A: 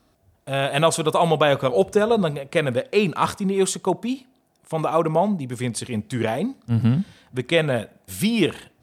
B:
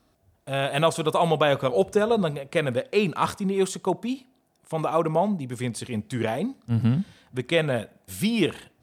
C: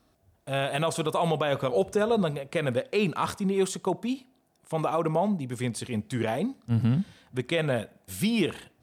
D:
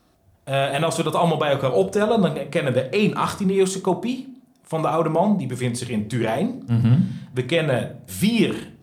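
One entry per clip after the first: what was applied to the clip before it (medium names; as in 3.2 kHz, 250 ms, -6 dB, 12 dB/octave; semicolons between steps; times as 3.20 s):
de-esser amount 45%; trim -3 dB
peak limiter -14.5 dBFS, peak gain reduction 7 dB; trim -1 dB
simulated room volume 420 m³, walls furnished, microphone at 0.89 m; trim +5 dB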